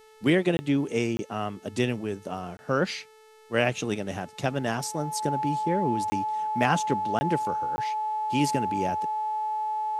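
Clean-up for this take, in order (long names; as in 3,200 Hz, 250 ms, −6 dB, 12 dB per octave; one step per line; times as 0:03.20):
hum removal 435.8 Hz, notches 30
notch filter 860 Hz, Q 30
repair the gap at 0:00.57/0:01.17/0:02.57/0:06.10/0:07.19/0:07.76, 20 ms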